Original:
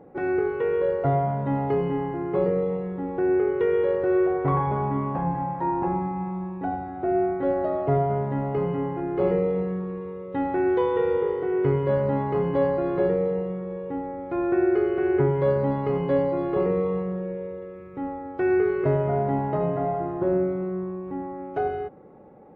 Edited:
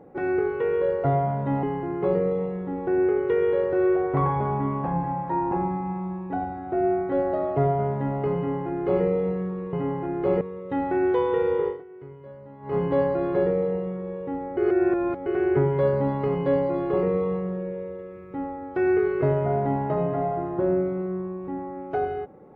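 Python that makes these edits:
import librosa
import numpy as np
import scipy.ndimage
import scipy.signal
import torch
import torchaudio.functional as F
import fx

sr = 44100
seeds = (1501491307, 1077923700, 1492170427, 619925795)

y = fx.edit(x, sr, fx.cut(start_s=1.63, length_s=0.31),
    fx.duplicate(start_s=8.67, length_s=0.68, to_s=10.04),
    fx.fade_down_up(start_s=11.31, length_s=1.08, db=-20.5, fade_s=0.19, curve='qua'),
    fx.reverse_span(start_s=14.2, length_s=0.69), tone=tone)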